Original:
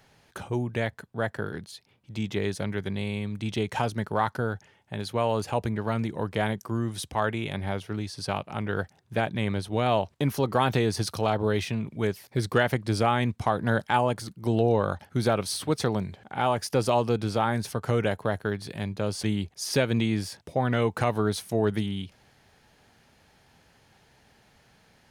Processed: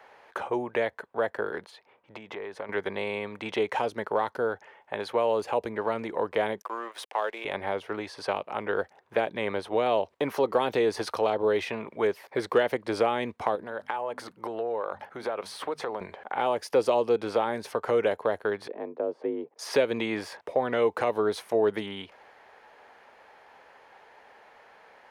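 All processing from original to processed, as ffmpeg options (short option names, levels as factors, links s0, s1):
-filter_complex "[0:a]asettb=1/sr,asplit=3[s0][s1][s2];[s0]atrim=end=1.704[s3];[s1]atrim=start=1.7:end=2.69,asetpts=PTS-STARTPTS,afade=t=in:d=0.004:c=qsin,afade=t=out:st=0.986:d=0.004:c=qsin,highshelf=f=3900:g=-8.5,acompressor=threshold=0.0178:ratio=16:attack=3.2:release=140:knee=1:detection=peak[s4];[s2]atrim=start=2.686[s5];[s3][s4]acrossfade=d=0.004:c1=hsin:c2=qsin[s6];[s6][s5]acrossfade=d=0.004:c1=qsin:c2=hsin,asettb=1/sr,asplit=3[s7][s8][s9];[s7]atrim=end=6.624[s10];[s8]atrim=start=6.62:end=7.45,asetpts=PTS-STARTPTS,afade=t=in:d=0.004:c=qsin,afade=t=out:st=0.826:d=0.004:c=qsin,highpass=520,aeval=exprs='sgn(val(0))*max(abs(val(0))-0.00299,0)':c=same[s11];[s9]atrim=start=7.446[s12];[s10][s11]acrossfade=d=0.004:c1=hsin:c2=qsin[s13];[s13][s12]acrossfade=d=0.004:c1=qsin:c2=hsin,asettb=1/sr,asplit=3[s14][s15][s16];[s14]atrim=end=13.554[s17];[s15]atrim=start=13.55:end=16.01,asetpts=PTS-STARTPTS,afade=t=in:d=0.004:c=qsin,afade=t=out:st=2.456:d=0.004:c=qsin,bandreject=f=50:t=h:w=6,bandreject=f=100:t=h:w=6,bandreject=f=150:t=h:w=6,bandreject=f=200:t=h:w=6,bandreject=f=250:t=h:w=6,acompressor=threshold=0.0224:ratio=4:attack=3.2:release=140:knee=1:detection=peak[s18];[s16]atrim=start=16.006[s19];[s17][s18]acrossfade=d=0.004:c1=hsin:c2=qsin[s20];[s20][s19]acrossfade=d=0.004:c1=qsin:c2=hsin,asettb=1/sr,asplit=3[s21][s22][s23];[s21]atrim=end=18.684[s24];[s22]atrim=start=18.68:end=19.59,asetpts=PTS-STARTPTS,afade=t=in:d=0.004:c=qsin,afade=t=out:st=0.906:d=0.004:c=qsin,bandpass=f=310:t=q:w=1.5,afreqshift=52[s25];[s23]atrim=start=19.586[s26];[s24][s25]acrossfade=d=0.004:c1=hsin:c2=qsin[s27];[s27][s26]acrossfade=d=0.004:c1=qsin:c2=hsin,equalizer=f=125:t=o:w=1:g=-5,equalizer=f=500:t=o:w=1:g=9,equalizer=f=1000:t=o:w=1:g=10,equalizer=f=2000:t=o:w=1:g=6,acrossover=split=440|3000[s28][s29][s30];[s29]acompressor=threshold=0.0316:ratio=6[s31];[s28][s31][s30]amix=inputs=3:normalize=0,bass=f=250:g=-14,treble=f=4000:g=-9"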